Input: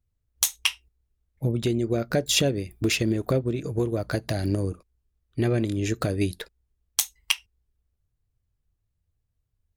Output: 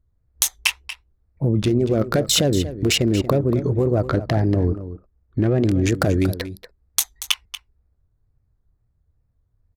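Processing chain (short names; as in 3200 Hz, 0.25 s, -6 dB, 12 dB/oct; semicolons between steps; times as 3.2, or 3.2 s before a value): Wiener smoothing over 15 samples; 4.09–5.64 LPF 2300 Hz 6 dB/oct; in parallel at +1 dB: negative-ratio compressor -28 dBFS, ratio -1; on the sum: wow and flutter 140 cents; echo 0.234 s -13 dB; gain +1.5 dB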